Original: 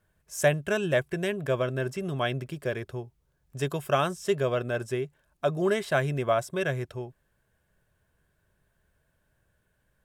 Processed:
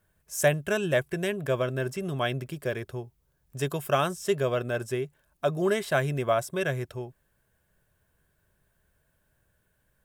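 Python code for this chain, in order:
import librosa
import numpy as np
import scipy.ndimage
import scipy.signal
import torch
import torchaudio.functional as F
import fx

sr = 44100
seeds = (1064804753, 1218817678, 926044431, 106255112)

y = fx.high_shelf(x, sr, hz=11000.0, db=10.0)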